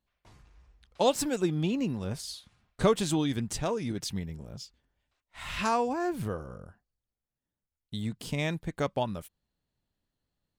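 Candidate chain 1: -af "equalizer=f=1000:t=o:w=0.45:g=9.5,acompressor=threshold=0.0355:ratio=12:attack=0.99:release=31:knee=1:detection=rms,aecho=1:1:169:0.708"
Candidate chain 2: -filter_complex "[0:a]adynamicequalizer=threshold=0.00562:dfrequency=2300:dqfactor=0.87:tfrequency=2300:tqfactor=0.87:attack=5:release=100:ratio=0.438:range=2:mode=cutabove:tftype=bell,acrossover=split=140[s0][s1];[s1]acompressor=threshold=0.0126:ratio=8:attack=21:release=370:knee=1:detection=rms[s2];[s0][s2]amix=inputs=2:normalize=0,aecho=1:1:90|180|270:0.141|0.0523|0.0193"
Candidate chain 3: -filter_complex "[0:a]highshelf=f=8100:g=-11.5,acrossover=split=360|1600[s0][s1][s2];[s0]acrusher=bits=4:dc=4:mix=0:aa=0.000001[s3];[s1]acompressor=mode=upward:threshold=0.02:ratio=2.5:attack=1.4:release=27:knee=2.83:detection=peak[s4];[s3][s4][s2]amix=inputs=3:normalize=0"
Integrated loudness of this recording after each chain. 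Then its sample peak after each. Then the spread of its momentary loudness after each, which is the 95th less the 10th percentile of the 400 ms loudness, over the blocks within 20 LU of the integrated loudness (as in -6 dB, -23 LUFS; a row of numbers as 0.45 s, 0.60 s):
-35.0 LUFS, -40.0 LUFS, -32.5 LUFS; -21.0 dBFS, -19.0 dBFS, -11.5 dBFS; 12 LU, 13 LU, 21 LU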